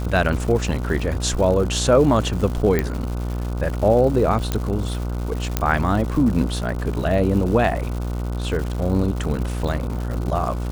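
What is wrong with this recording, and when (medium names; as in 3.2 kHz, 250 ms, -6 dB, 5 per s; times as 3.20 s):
buzz 60 Hz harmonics 25 -25 dBFS
crackle 230 per s -28 dBFS
2.79 s: pop -7 dBFS
4.52 s: pop -8 dBFS
5.57 s: pop -4 dBFS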